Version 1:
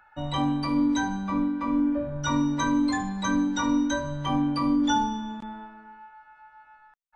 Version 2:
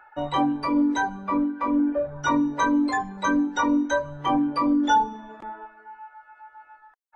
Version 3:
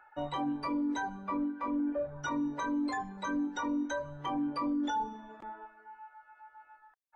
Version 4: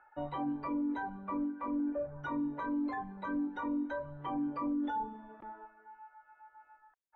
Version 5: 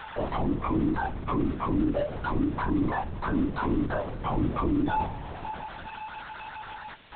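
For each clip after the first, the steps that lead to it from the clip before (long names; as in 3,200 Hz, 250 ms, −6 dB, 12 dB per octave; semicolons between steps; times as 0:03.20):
reverb reduction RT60 0.79 s; drawn EQ curve 220 Hz 0 dB, 350 Hz +14 dB, 2,100 Hz +9 dB, 3,900 Hz +2 dB; level −4.5 dB
brickwall limiter −18.5 dBFS, peak gain reduction 8.5 dB; level −7.5 dB
high-frequency loss of the air 470 metres; level −1 dB
converter with a step at zero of −43 dBFS; linear-prediction vocoder at 8 kHz whisper; level +7 dB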